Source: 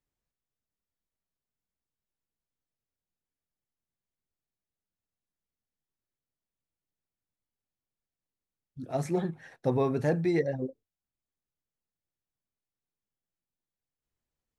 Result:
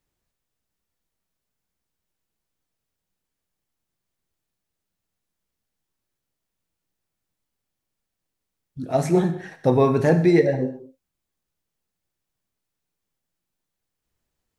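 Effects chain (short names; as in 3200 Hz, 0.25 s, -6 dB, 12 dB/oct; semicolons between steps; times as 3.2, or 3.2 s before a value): non-linear reverb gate 0.26 s falling, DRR 7.5 dB; gain +9 dB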